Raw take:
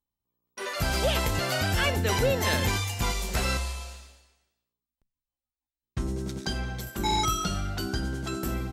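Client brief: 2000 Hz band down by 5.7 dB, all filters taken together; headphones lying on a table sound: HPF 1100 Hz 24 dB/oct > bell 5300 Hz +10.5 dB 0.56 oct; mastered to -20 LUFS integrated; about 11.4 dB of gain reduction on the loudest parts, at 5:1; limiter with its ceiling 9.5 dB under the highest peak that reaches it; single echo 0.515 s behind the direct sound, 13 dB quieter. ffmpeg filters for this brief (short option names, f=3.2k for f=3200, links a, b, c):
-af "equalizer=f=2k:t=o:g=-8,acompressor=threshold=-35dB:ratio=5,alimiter=level_in=9dB:limit=-24dB:level=0:latency=1,volume=-9dB,highpass=f=1.1k:w=0.5412,highpass=f=1.1k:w=1.3066,equalizer=f=5.3k:t=o:w=0.56:g=10.5,aecho=1:1:515:0.224,volume=22dB"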